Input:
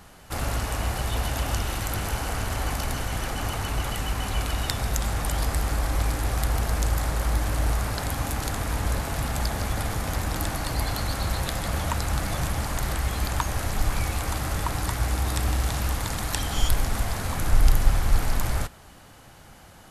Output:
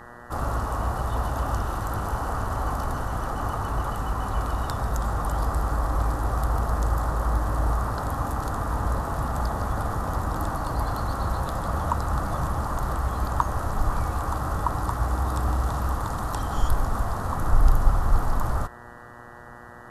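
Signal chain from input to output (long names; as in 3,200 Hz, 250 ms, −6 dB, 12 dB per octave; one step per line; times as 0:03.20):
high shelf with overshoot 1,600 Hz −9.5 dB, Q 3
hum with harmonics 120 Hz, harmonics 16, −46 dBFS 0 dB per octave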